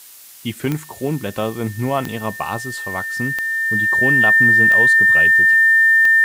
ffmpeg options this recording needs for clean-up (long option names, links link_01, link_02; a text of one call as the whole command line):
ffmpeg -i in.wav -af "adeclick=threshold=4,bandreject=frequency=1800:width=30,afftdn=noise_reduction=24:noise_floor=-38" out.wav